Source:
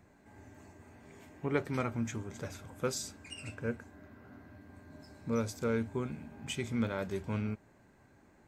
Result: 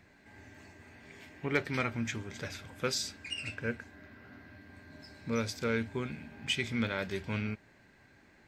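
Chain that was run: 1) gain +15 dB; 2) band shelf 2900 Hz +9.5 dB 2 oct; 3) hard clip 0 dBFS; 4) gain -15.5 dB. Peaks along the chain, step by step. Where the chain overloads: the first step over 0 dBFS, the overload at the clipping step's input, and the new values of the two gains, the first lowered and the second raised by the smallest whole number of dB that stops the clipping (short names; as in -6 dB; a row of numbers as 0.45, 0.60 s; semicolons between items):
-0.5, +3.5, 0.0, -15.5 dBFS; step 2, 3.5 dB; step 1 +11 dB, step 4 -11.5 dB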